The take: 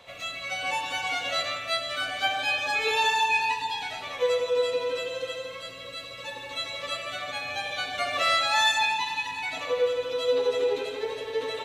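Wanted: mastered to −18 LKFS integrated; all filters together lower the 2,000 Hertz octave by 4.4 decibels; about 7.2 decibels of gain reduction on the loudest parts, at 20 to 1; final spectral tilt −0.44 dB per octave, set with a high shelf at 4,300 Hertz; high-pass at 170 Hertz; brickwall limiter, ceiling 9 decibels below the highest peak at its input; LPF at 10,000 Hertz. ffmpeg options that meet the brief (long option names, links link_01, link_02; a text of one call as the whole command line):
ffmpeg -i in.wav -af "highpass=170,lowpass=10000,equalizer=frequency=2000:width_type=o:gain=-7,highshelf=frequency=4300:gain=4.5,acompressor=threshold=-27dB:ratio=20,volume=17.5dB,alimiter=limit=-10.5dB:level=0:latency=1" out.wav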